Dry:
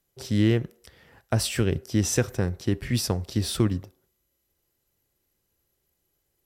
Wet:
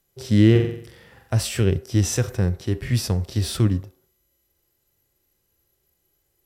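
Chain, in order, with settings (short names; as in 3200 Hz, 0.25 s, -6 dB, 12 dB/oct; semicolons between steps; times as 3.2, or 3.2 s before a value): harmonic-percussive split percussive -10 dB; 0.51–1.34 flutter echo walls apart 7.7 m, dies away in 0.62 s; gain +7 dB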